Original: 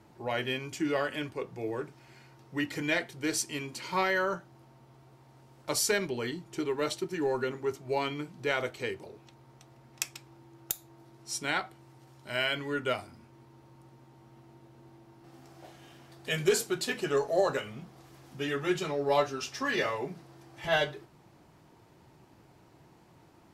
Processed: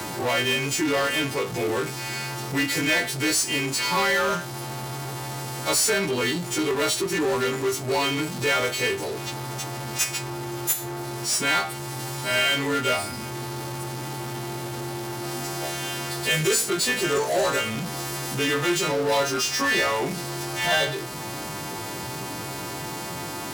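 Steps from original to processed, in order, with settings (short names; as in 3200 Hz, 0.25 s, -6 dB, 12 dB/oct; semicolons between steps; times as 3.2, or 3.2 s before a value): frequency quantiser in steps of 2 st; power-law curve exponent 0.5; HPF 54 Hz; three-band squash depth 40%; gain -3 dB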